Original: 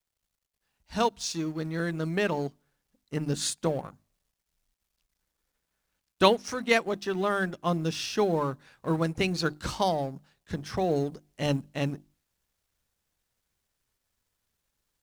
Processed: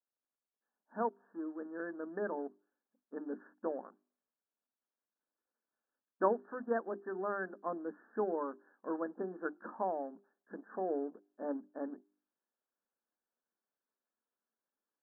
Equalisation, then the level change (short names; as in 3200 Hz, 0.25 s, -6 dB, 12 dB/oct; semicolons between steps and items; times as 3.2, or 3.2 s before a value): brick-wall FIR band-pass 200–1800 Hz; air absorption 360 m; notches 50/100/150/200/250/300/350/400 Hz; -7.5 dB